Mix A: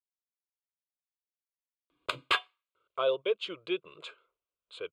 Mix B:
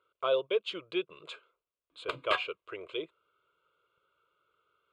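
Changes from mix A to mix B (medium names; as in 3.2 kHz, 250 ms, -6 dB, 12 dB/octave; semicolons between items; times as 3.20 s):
speech: entry -2.75 s; background: add treble shelf 2.6 kHz -11 dB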